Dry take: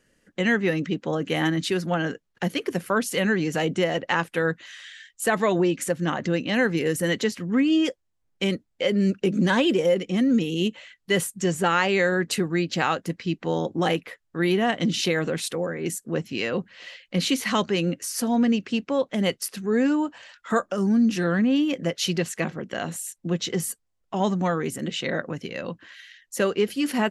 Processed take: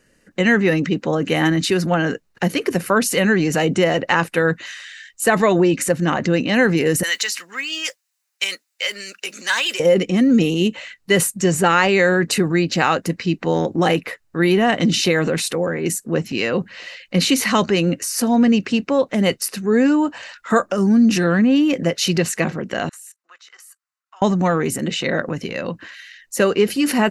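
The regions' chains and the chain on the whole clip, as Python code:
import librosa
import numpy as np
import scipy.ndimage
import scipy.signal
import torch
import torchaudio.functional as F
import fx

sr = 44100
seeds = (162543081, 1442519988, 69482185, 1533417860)

y = fx.chain(x, sr, fx.highpass(hz=1400.0, slope=12),
    fx.high_shelf(hz=3600.0, db=8.0),
    fx.mod_noise(seeds[0], snr_db=32), at=(7.03, 9.8))
y = fx.chain(y, sr, fx.ladder_highpass(hz=1100.0, resonance_pct=55),
    fx.level_steps(step_db=17), at=(22.89, 24.22))
y = fx.notch(y, sr, hz=3300.0, q=8.6)
y = fx.transient(y, sr, attack_db=1, sustain_db=5)
y = y * 10.0 ** (6.0 / 20.0)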